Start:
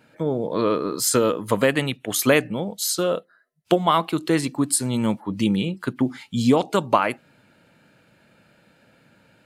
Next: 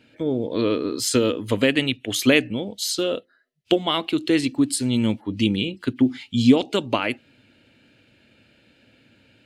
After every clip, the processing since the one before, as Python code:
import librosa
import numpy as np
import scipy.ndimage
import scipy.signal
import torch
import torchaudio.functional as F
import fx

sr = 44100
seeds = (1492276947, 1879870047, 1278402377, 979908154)

y = fx.curve_eq(x, sr, hz=(110.0, 170.0, 250.0, 1100.0, 2900.0, 12000.0), db=(0, -12, 1, -13, 3, -12))
y = y * 10.0 ** (3.5 / 20.0)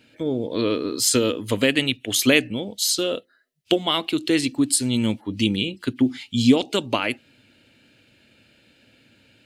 y = fx.high_shelf(x, sr, hz=4100.0, db=8.0)
y = y * 10.0 ** (-1.0 / 20.0)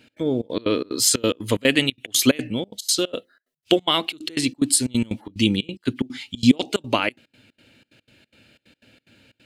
y = fx.step_gate(x, sr, bpm=182, pattern='x.xxx.x.x', floor_db=-24.0, edge_ms=4.5)
y = y * 10.0 ** (2.0 / 20.0)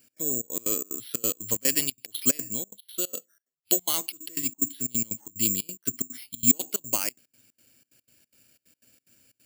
y = (np.kron(scipy.signal.resample_poly(x, 1, 6), np.eye(6)[0]) * 6)[:len(x)]
y = y * 10.0 ** (-13.5 / 20.0)